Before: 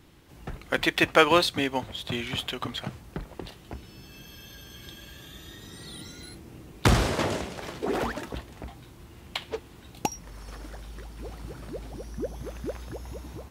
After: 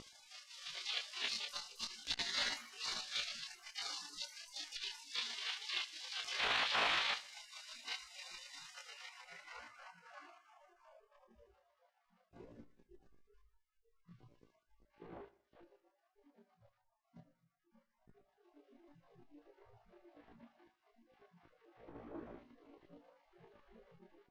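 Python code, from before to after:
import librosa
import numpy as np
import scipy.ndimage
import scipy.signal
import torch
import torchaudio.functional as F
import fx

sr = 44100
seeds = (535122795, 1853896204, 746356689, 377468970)

p1 = fx.bin_compress(x, sr, power=0.6)
p2 = fx.dmg_wind(p1, sr, seeds[0], corner_hz=120.0, level_db=-34.0)
p3 = fx.spec_gate(p2, sr, threshold_db=-30, keep='weak')
p4 = fx.high_shelf(p3, sr, hz=5000.0, db=-9.0)
p5 = (np.mod(10.0 ** (39.5 / 20.0) * p4 + 1.0, 2.0) - 1.0) / 10.0 ** (39.5 / 20.0)
p6 = p4 + F.gain(torch.from_numpy(p5), -4.0).numpy()
p7 = fx.wow_flutter(p6, sr, seeds[1], rate_hz=2.1, depth_cents=26.0)
p8 = fx.stretch_grains(p7, sr, factor=1.8, grain_ms=78.0)
p9 = fx.filter_sweep_lowpass(p8, sr, from_hz=3700.0, to_hz=340.0, start_s=8.58, end_s=11.8, q=1.4)
p10 = p9 + fx.echo_feedback(p9, sr, ms=65, feedback_pct=56, wet_db=-20.0, dry=0)
p11 = fx.transformer_sat(p10, sr, knee_hz=1100.0)
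y = F.gain(torch.from_numpy(p11), 7.5).numpy()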